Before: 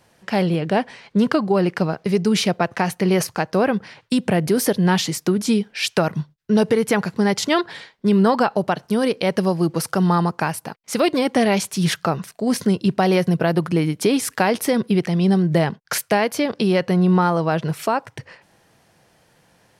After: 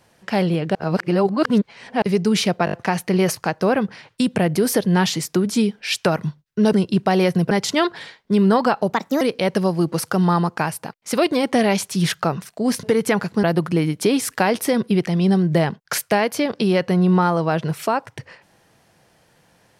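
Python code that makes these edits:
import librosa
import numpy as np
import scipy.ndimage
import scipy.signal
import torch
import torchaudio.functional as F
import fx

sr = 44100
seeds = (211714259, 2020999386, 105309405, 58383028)

y = fx.edit(x, sr, fx.reverse_span(start_s=0.75, length_s=1.27),
    fx.stutter(start_s=2.65, slice_s=0.02, count=5),
    fx.swap(start_s=6.65, length_s=0.6, other_s=12.65, other_length_s=0.78),
    fx.speed_span(start_s=8.67, length_s=0.36, speed=1.28), tone=tone)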